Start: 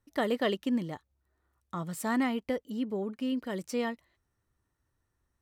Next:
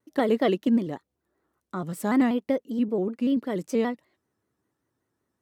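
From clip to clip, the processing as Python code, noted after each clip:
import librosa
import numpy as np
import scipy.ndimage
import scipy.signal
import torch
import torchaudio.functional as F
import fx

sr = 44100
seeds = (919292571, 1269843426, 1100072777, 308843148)

y = scipy.signal.sosfilt(scipy.signal.butter(2, 140.0, 'highpass', fs=sr, output='sos'), x)
y = fx.peak_eq(y, sr, hz=320.0, db=8.5, octaves=2.4)
y = fx.vibrato_shape(y, sr, shape='square', rate_hz=5.2, depth_cents=100.0)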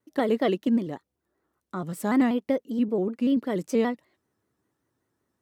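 y = fx.rider(x, sr, range_db=10, speed_s=2.0)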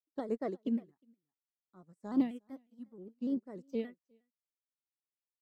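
y = fx.phaser_stages(x, sr, stages=4, low_hz=360.0, high_hz=3300.0, hz=0.65, feedback_pct=5)
y = y + 10.0 ** (-13.0 / 20.0) * np.pad(y, (int(359 * sr / 1000.0), 0))[:len(y)]
y = fx.upward_expand(y, sr, threshold_db=-41.0, expansion=2.5)
y = F.gain(torch.from_numpy(y), -5.5).numpy()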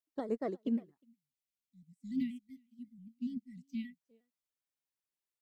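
y = fx.spec_erase(x, sr, start_s=1.04, length_s=2.96, low_hz=260.0, high_hz=1900.0)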